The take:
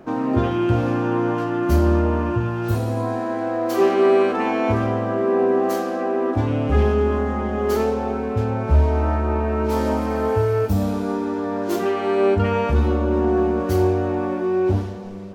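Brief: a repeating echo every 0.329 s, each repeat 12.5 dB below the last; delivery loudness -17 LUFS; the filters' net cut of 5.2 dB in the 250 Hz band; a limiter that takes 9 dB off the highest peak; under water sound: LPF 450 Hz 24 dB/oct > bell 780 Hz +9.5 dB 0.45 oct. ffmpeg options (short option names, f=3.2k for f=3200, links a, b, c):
-af "equalizer=f=250:t=o:g=-7.5,alimiter=limit=-15.5dB:level=0:latency=1,lowpass=f=450:w=0.5412,lowpass=f=450:w=1.3066,equalizer=f=780:t=o:w=0.45:g=9.5,aecho=1:1:329|658|987:0.237|0.0569|0.0137,volume=9.5dB"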